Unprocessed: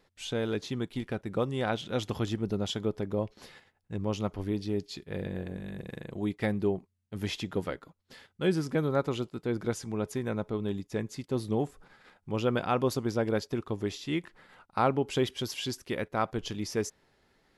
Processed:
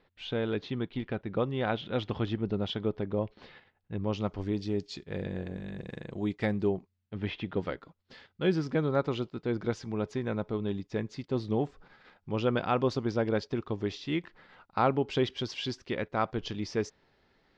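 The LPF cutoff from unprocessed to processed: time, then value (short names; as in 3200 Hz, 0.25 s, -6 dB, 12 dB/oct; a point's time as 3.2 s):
LPF 24 dB/oct
3.96 s 3900 Hz
4.49 s 7000 Hz
6.69 s 7000 Hz
7.37 s 2900 Hz
7.68 s 5200 Hz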